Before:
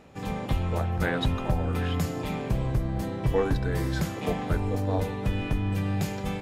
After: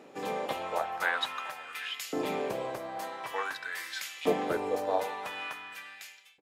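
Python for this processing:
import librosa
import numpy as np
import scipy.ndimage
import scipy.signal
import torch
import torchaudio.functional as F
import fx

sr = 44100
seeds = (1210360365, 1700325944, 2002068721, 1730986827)

y = fx.fade_out_tail(x, sr, length_s=0.98)
y = fx.filter_lfo_highpass(y, sr, shape='saw_up', hz=0.47, low_hz=310.0, high_hz=2900.0, q=1.5)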